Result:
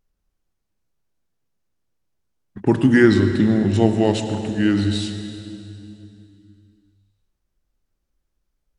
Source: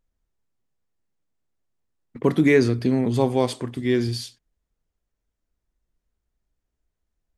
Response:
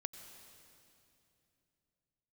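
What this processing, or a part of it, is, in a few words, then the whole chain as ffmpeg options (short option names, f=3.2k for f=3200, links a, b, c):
slowed and reverbed: -filter_complex "[0:a]asetrate=37044,aresample=44100[a];[1:a]atrim=start_sample=2205[b];[a][b]afir=irnorm=-1:irlink=0,volume=6dB"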